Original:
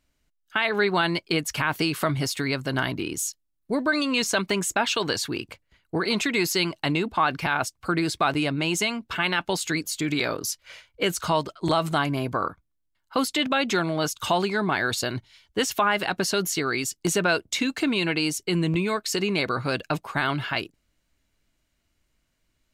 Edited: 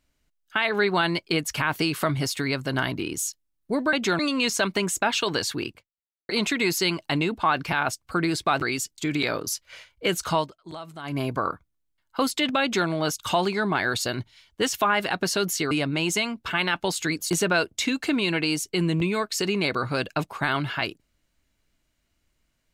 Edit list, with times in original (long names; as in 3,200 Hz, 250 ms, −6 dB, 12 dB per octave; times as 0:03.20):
0:05.46–0:06.03: fade out exponential
0:08.36–0:09.95: swap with 0:16.68–0:17.04
0:11.34–0:12.15: duck −15.5 dB, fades 0.15 s
0:13.59–0:13.85: duplicate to 0:03.93